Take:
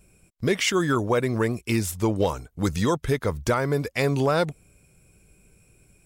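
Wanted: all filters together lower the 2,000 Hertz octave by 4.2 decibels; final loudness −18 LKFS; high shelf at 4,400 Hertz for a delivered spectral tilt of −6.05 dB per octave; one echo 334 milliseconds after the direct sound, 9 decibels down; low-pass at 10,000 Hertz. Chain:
low-pass filter 10,000 Hz
parametric band 2,000 Hz −4 dB
high-shelf EQ 4,400 Hz −6.5 dB
single-tap delay 334 ms −9 dB
level +7 dB

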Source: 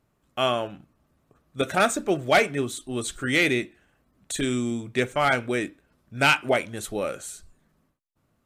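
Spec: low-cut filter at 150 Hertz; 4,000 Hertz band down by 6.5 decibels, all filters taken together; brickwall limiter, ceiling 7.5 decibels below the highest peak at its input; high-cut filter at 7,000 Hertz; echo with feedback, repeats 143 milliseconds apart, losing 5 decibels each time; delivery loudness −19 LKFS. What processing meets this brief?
high-pass filter 150 Hz
low-pass filter 7,000 Hz
parametric band 4,000 Hz −9 dB
brickwall limiter −16.5 dBFS
repeating echo 143 ms, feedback 56%, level −5 dB
level +9.5 dB

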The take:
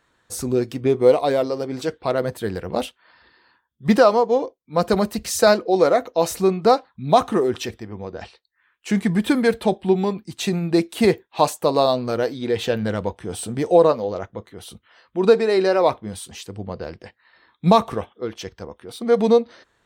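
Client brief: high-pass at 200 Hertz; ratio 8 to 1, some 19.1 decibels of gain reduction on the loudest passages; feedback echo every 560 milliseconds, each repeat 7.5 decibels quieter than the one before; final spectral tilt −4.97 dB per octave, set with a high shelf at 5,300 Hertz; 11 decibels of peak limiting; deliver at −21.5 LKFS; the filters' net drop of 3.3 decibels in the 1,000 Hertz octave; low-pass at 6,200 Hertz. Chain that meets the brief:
high-pass filter 200 Hz
low-pass filter 6,200 Hz
parametric band 1,000 Hz −4.5 dB
high-shelf EQ 5,300 Hz −8.5 dB
downward compressor 8 to 1, threshold −31 dBFS
brickwall limiter −28 dBFS
repeating echo 560 ms, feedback 42%, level −7.5 dB
level +17 dB

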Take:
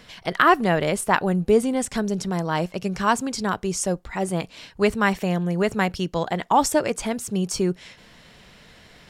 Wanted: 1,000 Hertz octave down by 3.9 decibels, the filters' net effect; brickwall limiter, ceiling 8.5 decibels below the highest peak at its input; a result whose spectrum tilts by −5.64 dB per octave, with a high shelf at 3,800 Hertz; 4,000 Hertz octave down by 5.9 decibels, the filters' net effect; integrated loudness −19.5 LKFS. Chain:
parametric band 1,000 Hz −4.5 dB
high-shelf EQ 3,800 Hz −3.5 dB
parametric band 4,000 Hz −6 dB
level +7.5 dB
brickwall limiter −7.5 dBFS

